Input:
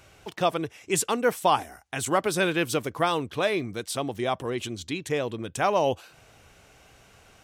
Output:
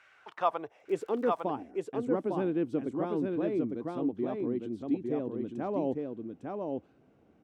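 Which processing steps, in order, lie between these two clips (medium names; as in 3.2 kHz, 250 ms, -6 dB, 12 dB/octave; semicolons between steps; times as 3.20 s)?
band-pass sweep 1.7 kHz -> 270 Hz, 0.10–1.35 s; delay 854 ms -3.5 dB; 0.80–1.40 s: crackle 55 per s -47 dBFS; trim +2 dB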